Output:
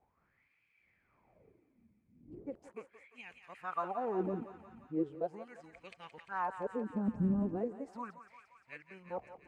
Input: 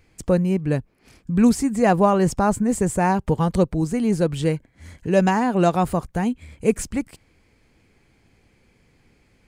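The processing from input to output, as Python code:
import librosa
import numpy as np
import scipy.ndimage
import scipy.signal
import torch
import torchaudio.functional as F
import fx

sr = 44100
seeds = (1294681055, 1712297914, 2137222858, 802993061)

p1 = np.flip(x).copy()
p2 = fx.dmg_wind(p1, sr, seeds[0], corner_hz=88.0, level_db=-31.0)
p3 = fx.level_steps(p2, sr, step_db=10)
p4 = p2 + (p3 * librosa.db_to_amplitude(1.0))
p5 = fx.wah_lfo(p4, sr, hz=0.38, low_hz=210.0, high_hz=2500.0, q=7.9)
p6 = p5 + fx.echo_thinned(p5, sr, ms=174, feedback_pct=78, hz=790.0, wet_db=-9, dry=0)
y = p6 * librosa.db_to_amplitude(-7.0)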